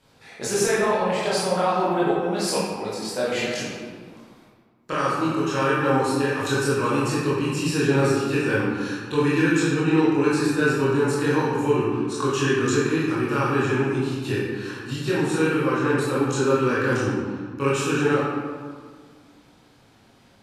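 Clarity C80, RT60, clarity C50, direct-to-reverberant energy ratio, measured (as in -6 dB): 0.5 dB, 1.7 s, -2.0 dB, -9.0 dB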